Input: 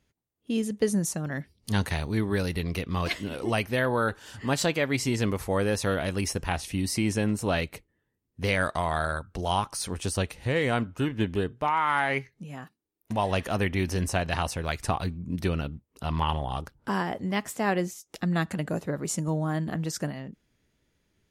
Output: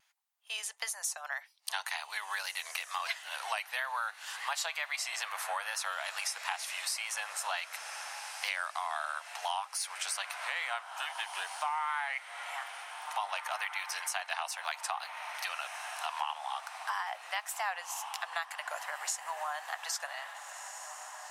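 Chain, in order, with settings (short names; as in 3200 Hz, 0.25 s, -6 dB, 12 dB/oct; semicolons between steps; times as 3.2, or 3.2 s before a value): steep high-pass 740 Hz 48 dB/oct; wow and flutter 65 cents; on a send: diffused feedback echo 1.718 s, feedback 42%, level -14 dB; on the sum: compressor 4:1, threshold -39 dBFS, peak gain reduction 14.5 dB; gain +5.5 dB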